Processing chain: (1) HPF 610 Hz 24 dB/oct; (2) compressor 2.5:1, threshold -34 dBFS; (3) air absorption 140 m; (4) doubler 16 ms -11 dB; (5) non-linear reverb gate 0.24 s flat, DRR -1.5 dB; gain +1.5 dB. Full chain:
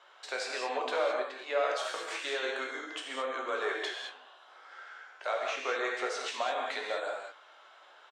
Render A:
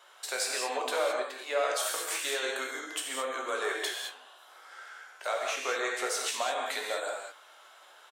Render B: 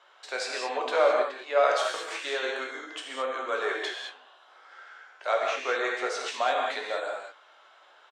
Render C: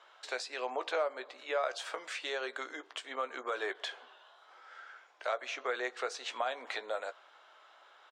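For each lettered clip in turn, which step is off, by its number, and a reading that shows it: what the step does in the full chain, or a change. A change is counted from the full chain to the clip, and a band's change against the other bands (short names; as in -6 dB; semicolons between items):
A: 3, 8 kHz band +12.0 dB; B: 2, loudness change +5.0 LU; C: 5, momentary loudness spread change +4 LU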